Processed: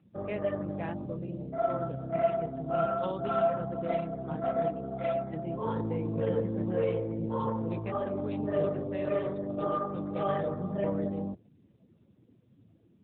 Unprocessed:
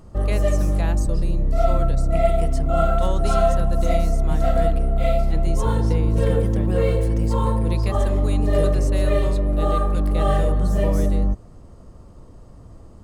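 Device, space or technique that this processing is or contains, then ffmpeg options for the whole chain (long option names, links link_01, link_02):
mobile call with aggressive noise cancelling: -af "highpass=140,afftdn=noise_reduction=21:noise_floor=-40,volume=-6.5dB" -ar 8000 -c:a libopencore_amrnb -b:a 10200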